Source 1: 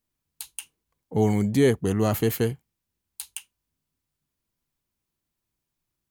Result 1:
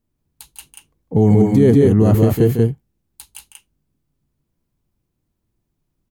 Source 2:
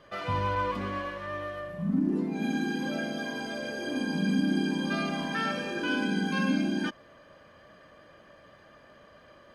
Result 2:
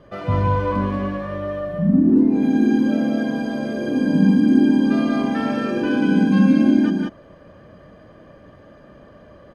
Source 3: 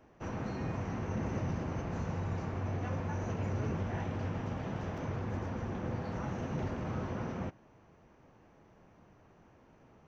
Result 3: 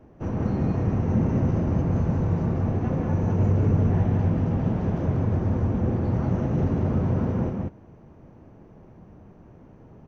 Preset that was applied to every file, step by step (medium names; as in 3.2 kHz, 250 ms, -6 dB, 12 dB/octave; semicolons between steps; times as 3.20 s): tilt shelf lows +8 dB, about 760 Hz; loudspeakers at several distances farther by 52 m -10 dB, 64 m -3 dB; loudness maximiser +7.5 dB; trim -2.5 dB